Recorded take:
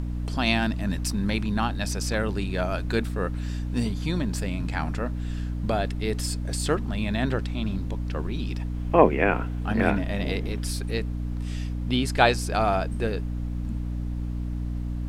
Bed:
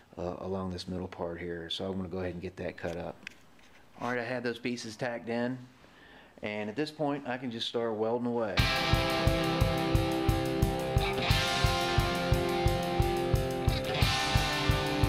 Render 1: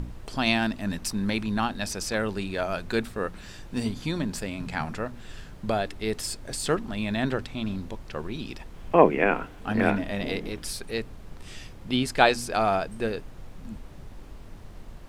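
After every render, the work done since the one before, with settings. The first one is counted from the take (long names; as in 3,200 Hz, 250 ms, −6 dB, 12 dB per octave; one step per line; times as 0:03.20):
hum removal 60 Hz, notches 5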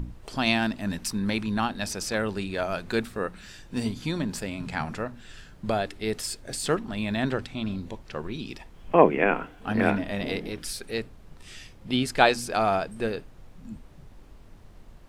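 noise reduction from a noise print 6 dB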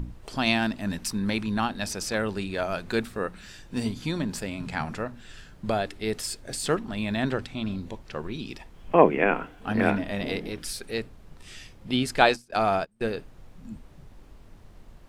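0:12.21–0:13.01: noise gate −31 dBFS, range −27 dB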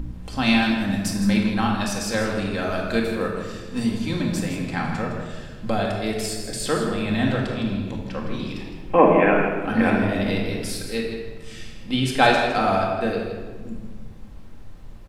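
on a send: single-tap delay 161 ms −10 dB
on the sum: rectangular room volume 1,300 cubic metres, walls mixed, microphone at 2.1 metres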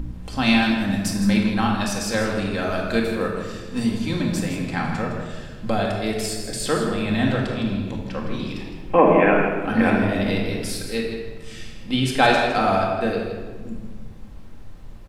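level +1 dB
brickwall limiter −3 dBFS, peak gain reduction 3 dB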